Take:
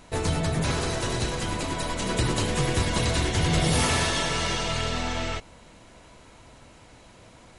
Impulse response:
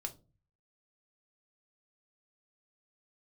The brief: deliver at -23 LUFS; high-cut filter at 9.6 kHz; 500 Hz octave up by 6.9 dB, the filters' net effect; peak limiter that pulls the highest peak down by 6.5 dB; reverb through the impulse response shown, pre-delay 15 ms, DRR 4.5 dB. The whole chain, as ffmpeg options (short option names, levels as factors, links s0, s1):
-filter_complex "[0:a]lowpass=9600,equalizer=f=500:t=o:g=8.5,alimiter=limit=0.168:level=0:latency=1,asplit=2[s0][s1];[1:a]atrim=start_sample=2205,adelay=15[s2];[s1][s2]afir=irnorm=-1:irlink=0,volume=0.708[s3];[s0][s3]amix=inputs=2:normalize=0,volume=1.19"